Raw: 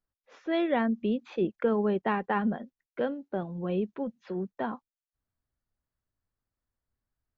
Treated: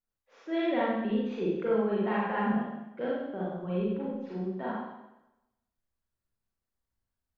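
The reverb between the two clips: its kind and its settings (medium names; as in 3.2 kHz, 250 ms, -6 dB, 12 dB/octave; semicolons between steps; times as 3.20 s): Schroeder reverb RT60 0.94 s, combs from 33 ms, DRR -6.5 dB; trim -8 dB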